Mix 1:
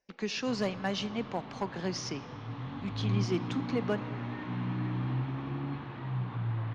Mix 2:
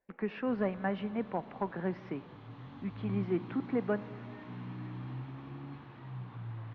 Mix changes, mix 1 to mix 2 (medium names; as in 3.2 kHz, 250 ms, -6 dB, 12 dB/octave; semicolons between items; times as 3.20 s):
speech: add low-pass 2 kHz 24 dB/octave; background -9.0 dB